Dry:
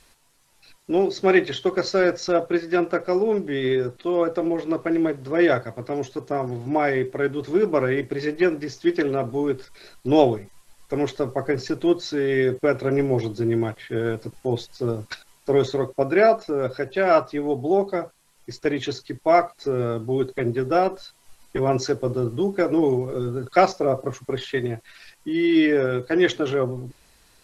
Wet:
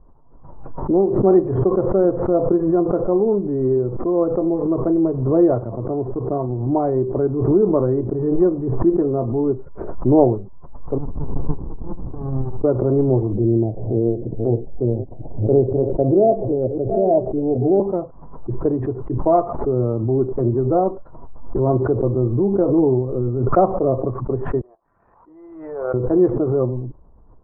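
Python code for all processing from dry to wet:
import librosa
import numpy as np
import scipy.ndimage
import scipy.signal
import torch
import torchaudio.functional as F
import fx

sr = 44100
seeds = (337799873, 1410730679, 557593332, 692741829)

y = fx.chain(x, sr, fx.highpass(hz=590.0, slope=24),
    fx.peak_eq(hz=1500.0, db=3.5, octaves=2.1),
    fx.running_max(window=65), at=(10.98, 12.64))
y = fx.chain(y, sr, fx.reverse_delay(ms=472, wet_db=-11),
    fx.steep_lowpass(hz=760.0, slope=48), at=(13.33, 17.8))
y = fx.chain(y, sr, fx.bessel_highpass(hz=920.0, order=4),
    fx.power_curve(exponent=1.4), at=(24.61, 25.94))
y = scipy.signal.sosfilt(scipy.signal.ellip(4, 1.0, 80, 1100.0, 'lowpass', fs=sr, output='sos'), y)
y = fx.tilt_eq(y, sr, slope=-2.5)
y = fx.pre_swell(y, sr, db_per_s=47.0)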